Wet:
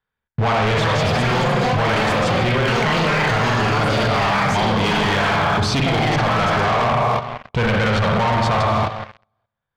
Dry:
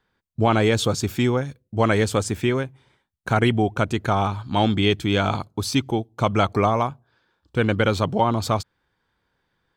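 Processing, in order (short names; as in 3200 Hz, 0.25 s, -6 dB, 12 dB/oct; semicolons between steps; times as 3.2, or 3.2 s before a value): spring tank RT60 1.2 s, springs 42/55 ms, chirp 45 ms, DRR 0 dB; sample leveller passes 5; echoes that change speed 0.508 s, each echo +6 st, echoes 2; in parallel at +2.5 dB: limiter -7.5 dBFS, peak gain reduction 9.5 dB; on the sum: bell 310 Hz -11 dB 0.82 oct; level quantiser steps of 11 dB; LPF 4100 Hz 12 dB/oct; hard clip -6.5 dBFS, distortion -21 dB; gain -6 dB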